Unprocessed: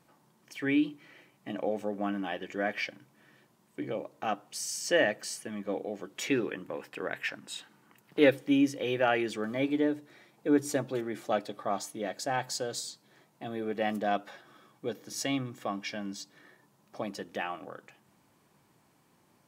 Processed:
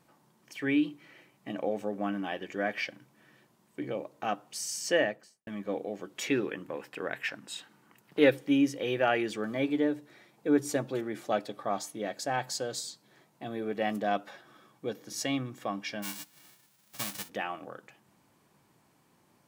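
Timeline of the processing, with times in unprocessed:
0:04.89–0:05.47: fade out and dull
0:16.02–0:17.28: spectral envelope flattened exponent 0.1

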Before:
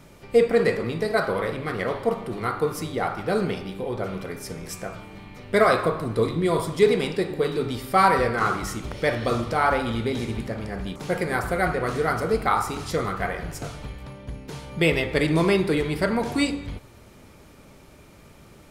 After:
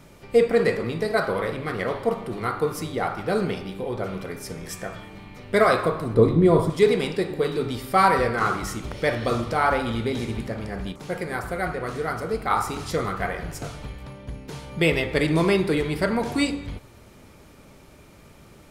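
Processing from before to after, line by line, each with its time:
0:04.60–0:05.08: hollow resonant body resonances 1,800/3,300 Hz, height 12 dB → 16 dB
0:06.14–0:06.70: tilt shelving filter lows +7.5 dB, about 1,200 Hz
0:10.92–0:12.50: clip gain −4 dB

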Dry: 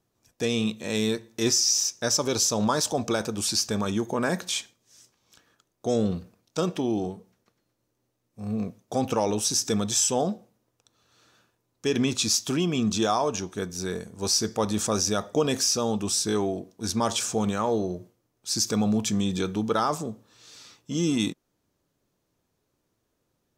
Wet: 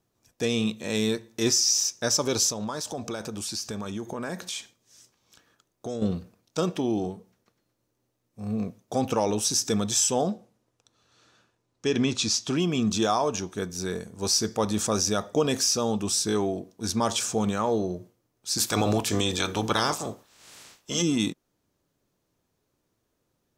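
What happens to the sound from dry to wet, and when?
0:02.50–0:06.02: downward compressor 2.5 to 1, threshold −32 dBFS
0:10.30–0:12.55: low-pass filter 12,000 Hz → 6,200 Hz
0:18.57–0:21.01: ceiling on every frequency bin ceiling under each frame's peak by 19 dB

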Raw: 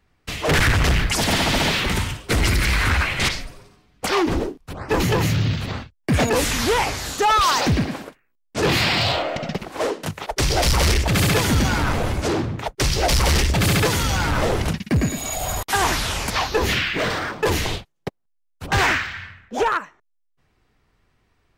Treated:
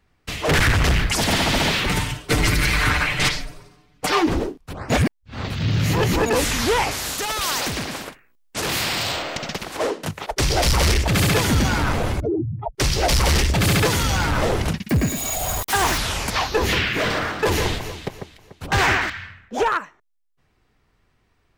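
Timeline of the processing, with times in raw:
0:01.87–0:04.27: comb filter 6.7 ms, depth 59%
0:04.90–0:06.26: reverse
0:06.91–0:09.77: every bin compressed towards the loudest bin 2 to 1
0:12.20–0:12.75: expanding power law on the bin magnitudes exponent 3.3
0:13.67–0:14.26: mu-law and A-law mismatch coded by mu
0:14.89–0:15.98: spike at every zero crossing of −26.5 dBFS
0:16.58–0:19.10: delay that swaps between a low-pass and a high-pass 146 ms, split 2,100 Hz, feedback 56%, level −6 dB

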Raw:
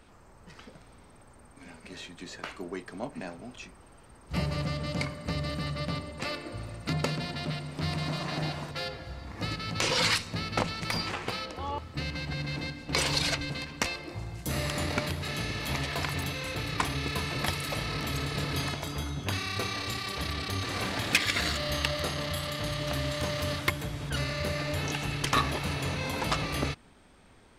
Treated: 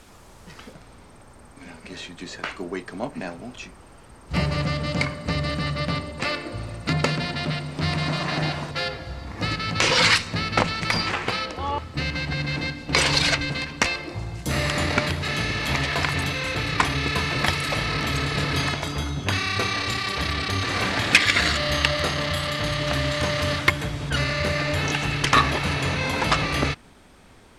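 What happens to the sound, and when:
0:00.73: noise floor change −60 dB −69 dB
whole clip: dynamic equaliser 1,800 Hz, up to +4 dB, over −42 dBFS, Q 0.98; low-pass filter 9,200 Hz 12 dB per octave; level +6.5 dB

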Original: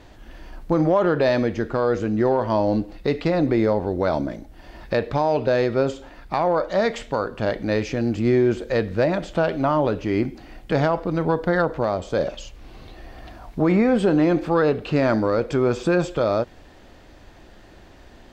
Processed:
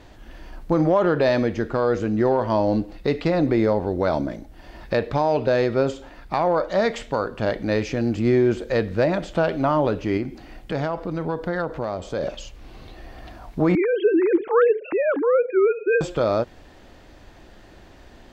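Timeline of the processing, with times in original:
0:10.17–0:12.23: downward compressor 1.5 to 1, threshold −30 dBFS
0:13.75–0:16.01: three sine waves on the formant tracks

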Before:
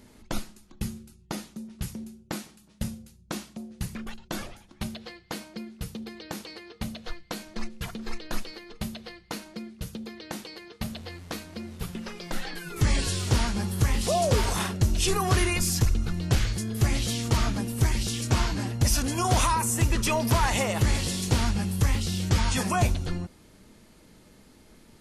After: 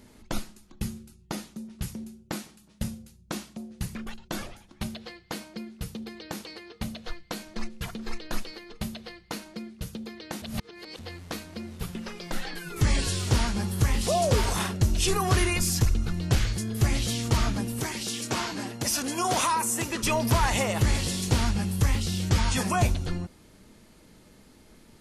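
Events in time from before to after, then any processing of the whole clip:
0:10.42–0:10.99: reverse
0:17.80–0:20.03: high-pass filter 230 Hz

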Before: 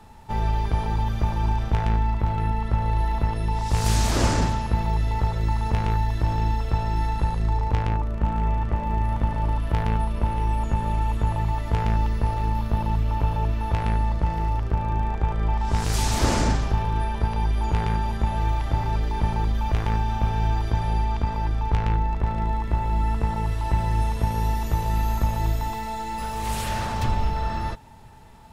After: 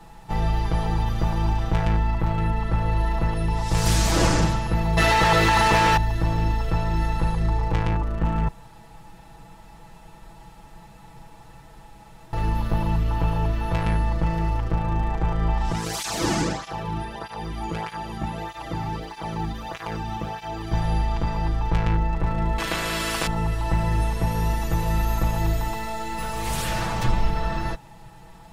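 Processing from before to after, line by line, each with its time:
0:04.97–0:05.97: mid-hump overdrive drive 28 dB, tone 6,800 Hz, clips at −11 dBFS
0:08.48–0:12.33: fill with room tone
0:15.72–0:20.72: through-zero flanger with one copy inverted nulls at 1.6 Hz, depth 2.1 ms
0:22.58–0:23.27: every bin compressed towards the loudest bin 4 to 1
whole clip: comb filter 6.1 ms, depth 98%

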